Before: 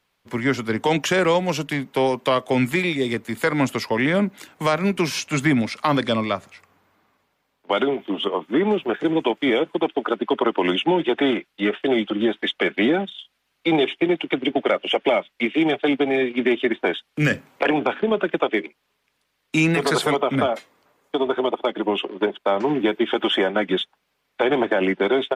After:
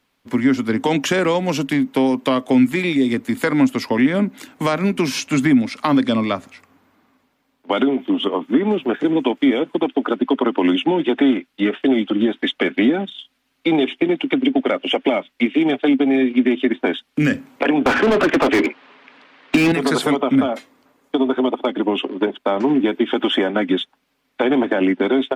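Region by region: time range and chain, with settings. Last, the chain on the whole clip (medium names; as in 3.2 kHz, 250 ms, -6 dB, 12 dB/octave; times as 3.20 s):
17.86–19.72 s: band-pass 130–3200 Hz + overdrive pedal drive 32 dB, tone 2.3 kHz, clips at -7 dBFS
whole clip: peaking EQ 260 Hz +13 dB 0.37 oct; compression 2:1, threshold -18 dBFS; trim +2.5 dB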